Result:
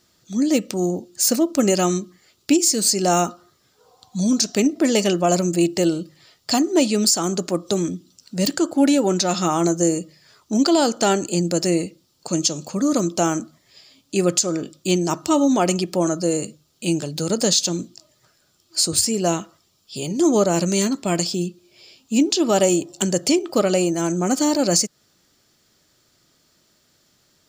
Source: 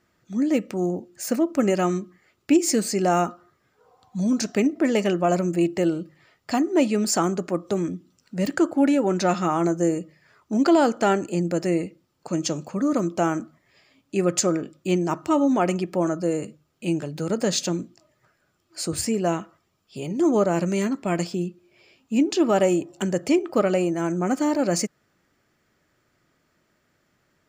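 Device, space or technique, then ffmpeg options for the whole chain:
over-bright horn tweeter: -af "highshelf=f=2.9k:t=q:w=1.5:g=10,alimiter=limit=-9.5dB:level=0:latency=1:release=221,volume=3dB"

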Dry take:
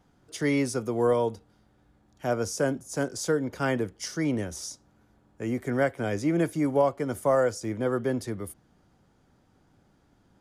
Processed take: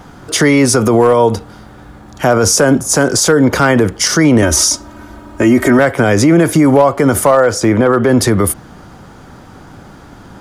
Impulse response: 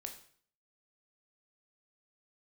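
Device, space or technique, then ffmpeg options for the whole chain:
loud club master: -filter_complex "[0:a]equalizer=f=1.2k:t=o:w=1.1:g=5,asettb=1/sr,asplit=3[a][b][c];[a]atrim=end=4.424[d];[b]atrim=start=4.42:end=5.79,asetpts=PTS-STARTPTS,afade=t=in:d=0.004:c=qsin,afade=t=out:st=1.366:d=0.004:c=qsin,aecho=1:1:3.2:0.86,atrim=end_sample=60417[e];[c]atrim=start=5.786[f];[d][e]acrossfade=d=0.004:c1=hsin:c2=qsin[g];[g][f]acrossfade=d=0.004:c1=qsin:c2=hsin,asettb=1/sr,asplit=3[h][i][j];[h]atrim=end=7.314[k];[i]atrim=start=7.31:end=8.09,asetpts=PTS-STARTPTS,afade=t=in:d=0.004:c=qsin,afade=t=out:st=0.776:d=0.004:c=qsin,bass=f=250:g=-3,treble=f=4k:g=-7[l];[j]atrim=start=8.086[m];[k][l]acrossfade=d=0.004:c1=hsin:c2=qsin[n];[n][m]acrossfade=d=0.004:c1=qsin:c2=hsin,acompressor=threshold=-27dB:ratio=2,asoftclip=type=hard:threshold=-19.5dB,alimiter=level_in=27.5dB:limit=-1dB:release=50:level=0:latency=1,volume=-1dB"

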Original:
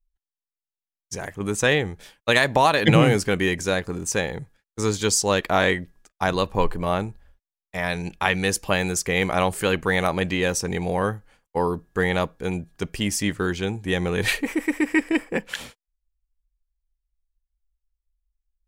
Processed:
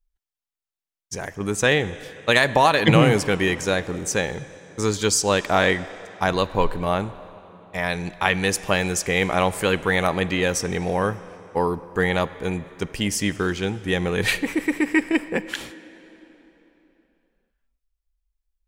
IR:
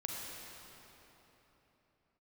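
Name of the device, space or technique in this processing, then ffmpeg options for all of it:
filtered reverb send: -filter_complex "[0:a]asplit=2[a][b];[b]highpass=f=240:p=1,lowpass=8.6k[c];[1:a]atrim=start_sample=2205[d];[c][d]afir=irnorm=-1:irlink=0,volume=-13.5dB[e];[a][e]amix=inputs=2:normalize=0"

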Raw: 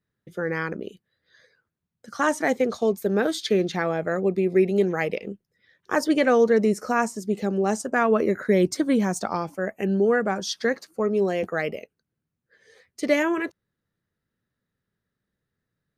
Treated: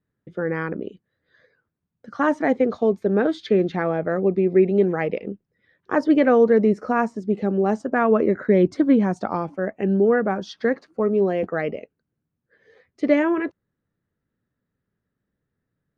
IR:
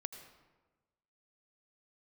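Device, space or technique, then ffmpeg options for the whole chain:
phone in a pocket: -af "lowpass=3.7k,equalizer=f=280:t=o:w=0.25:g=4,highshelf=f=2.1k:g=-10,volume=3dB"

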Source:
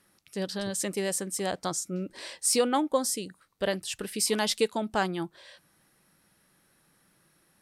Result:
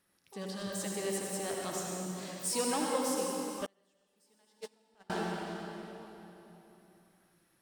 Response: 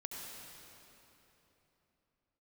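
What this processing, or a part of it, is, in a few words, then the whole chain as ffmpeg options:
shimmer-style reverb: -filter_complex "[0:a]asplit=2[a][b];[b]asetrate=88200,aresample=44100,atempo=0.5,volume=-11dB[c];[a][c]amix=inputs=2:normalize=0[d];[1:a]atrim=start_sample=2205[e];[d][e]afir=irnorm=-1:irlink=0,asettb=1/sr,asplit=3[f][g][h];[f]atrim=end=3.664[i];[g]atrim=start=3.66:end=5.1,asetpts=PTS-STARTPTS,afade=t=in:d=0.004:c=qsin,afade=t=out:st=1.436:d=0.004:c=qsin,agate=range=-35dB:threshold=-23dB:ratio=16:detection=peak[j];[h]atrim=start=5.096[k];[i][j]acrossfade=d=0.004:c1=hsin:c2=qsin[l];[l][k]acrossfade=d=0.004:c1=qsin:c2=hsin,volume=-4.5dB"

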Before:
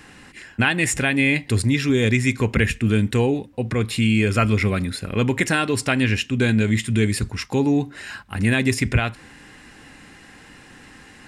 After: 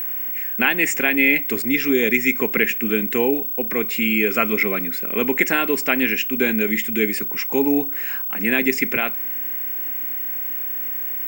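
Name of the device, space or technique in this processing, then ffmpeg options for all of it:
old television with a line whistle: -af "highpass=f=220:w=0.5412,highpass=f=220:w=1.3066,equalizer=f=410:t=q:w=4:g=3,equalizer=f=2.2k:t=q:w=4:g=7,equalizer=f=4k:t=q:w=4:g=-10,lowpass=f=8.1k:w=0.5412,lowpass=f=8.1k:w=1.3066,aeval=exprs='val(0)+0.0708*sin(2*PI*15734*n/s)':c=same"

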